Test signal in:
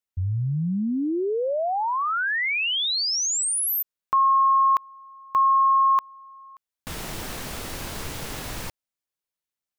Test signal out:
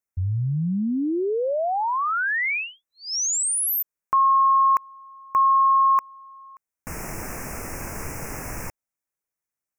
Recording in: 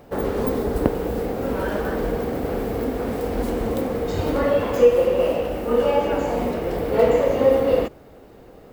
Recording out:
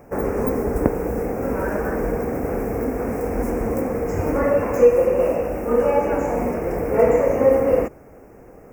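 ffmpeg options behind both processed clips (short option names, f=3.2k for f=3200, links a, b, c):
-af "asuperstop=centerf=3700:order=8:qfactor=1.3,volume=1dB"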